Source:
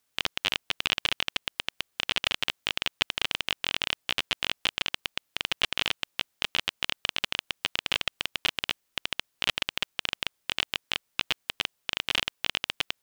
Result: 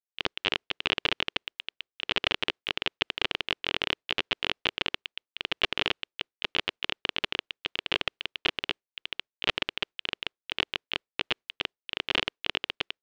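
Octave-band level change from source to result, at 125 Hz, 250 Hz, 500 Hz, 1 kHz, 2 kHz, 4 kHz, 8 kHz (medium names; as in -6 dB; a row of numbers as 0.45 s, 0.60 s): 0.0 dB, +3.5 dB, +5.0 dB, +0.5 dB, -0.5 dB, -1.5 dB, -12.0 dB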